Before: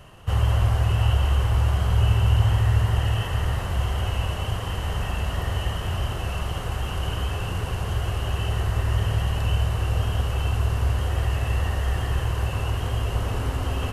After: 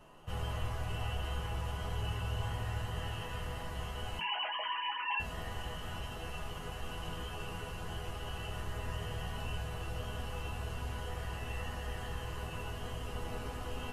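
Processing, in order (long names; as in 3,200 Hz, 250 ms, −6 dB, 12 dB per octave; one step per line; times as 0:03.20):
0:04.19–0:05.20: three sine waves on the formant tracks
resonators tuned to a chord E3 major, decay 0.22 s
noise in a band 240–1,100 Hz −66 dBFS
level +3 dB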